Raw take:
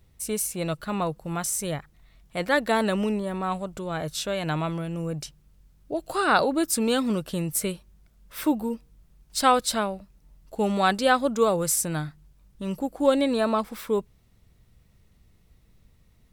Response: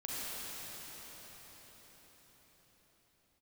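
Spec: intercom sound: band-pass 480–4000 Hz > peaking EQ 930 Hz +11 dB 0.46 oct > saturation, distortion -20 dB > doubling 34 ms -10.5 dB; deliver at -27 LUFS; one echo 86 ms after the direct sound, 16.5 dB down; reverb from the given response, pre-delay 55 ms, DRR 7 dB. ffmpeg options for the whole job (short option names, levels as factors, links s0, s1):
-filter_complex "[0:a]aecho=1:1:86:0.15,asplit=2[s0][s1];[1:a]atrim=start_sample=2205,adelay=55[s2];[s1][s2]afir=irnorm=-1:irlink=0,volume=0.299[s3];[s0][s3]amix=inputs=2:normalize=0,highpass=480,lowpass=4000,equalizer=f=930:t=o:w=0.46:g=11,asoftclip=threshold=0.473,asplit=2[s4][s5];[s5]adelay=34,volume=0.299[s6];[s4][s6]amix=inputs=2:normalize=0,volume=0.794"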